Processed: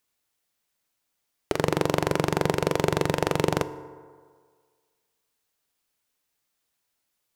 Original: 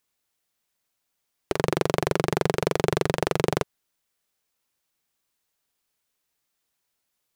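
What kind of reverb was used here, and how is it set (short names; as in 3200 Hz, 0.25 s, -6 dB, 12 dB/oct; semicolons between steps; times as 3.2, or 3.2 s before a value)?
FDN reverb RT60 1.8 s, low-frequency decay 0.8×, high-frequency decay 0.45×, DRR 13 dB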